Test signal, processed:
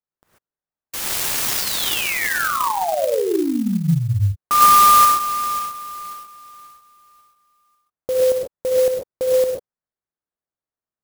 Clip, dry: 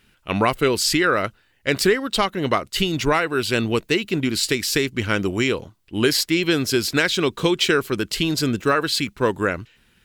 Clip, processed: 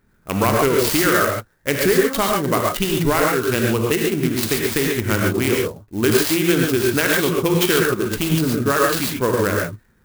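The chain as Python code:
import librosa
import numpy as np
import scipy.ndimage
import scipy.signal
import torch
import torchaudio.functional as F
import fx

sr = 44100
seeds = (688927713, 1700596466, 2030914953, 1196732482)

y = fx.wiener(x, sr, points=15)
y = fx.rev_gated(y, sr, seeds[0], gate_ms=160, shape='rising', drr_db=-1.0)
y = fx.clock_jitter(y, sr, seeds[1], jitter_ms=0.047)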